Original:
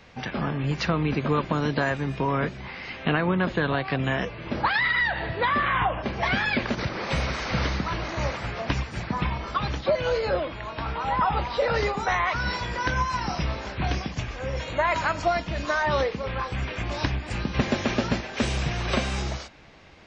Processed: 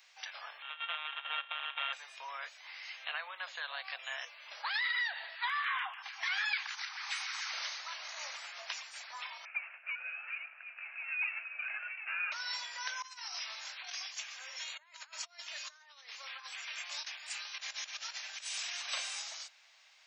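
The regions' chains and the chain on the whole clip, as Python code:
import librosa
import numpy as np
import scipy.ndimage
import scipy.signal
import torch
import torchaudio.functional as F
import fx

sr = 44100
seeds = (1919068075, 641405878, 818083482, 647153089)

y = fx.chain(x, sr, fx.sample_sort(block=32),
    fx.resample_bad(factor=6, down='none', up='filtered'), at=(0.62, 1.93))
y = fx.chain(y, sr, fx.cheby1_bandstop(low_hz=100.0, high_hz=780.0, order=4),
    fx.filter_lfo_highpass(shape='saw_down', hz=6.8, low_hz=640.0, high_hz=1700.0, q=1.7), at=(5.35, 7.52))
y = fx.chain(y, sr, fx.lower_of_two(delay_ms=1.0),
    fx.highpass(hz=960.0, slope=24),
    fx.freq_invert(carrier_hz=3500), at=(9.45, 12.32))
y = fx.chain(y, sr, fx.highpass(hz=1000.0, slope=6),
    fx.over_compress(threshold_db=-35.0, ratio=-0.5), at=(13.02, 18.82))
y = scipy.signal.sosfilt(scipy.signal.butter(6, 600.0, 'highpass', fs=sr, output='sos'), y)
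y = np.diff(y, prepend=0.0)
y = F.gain(torch.from_numpy(y), 1.0).numpy()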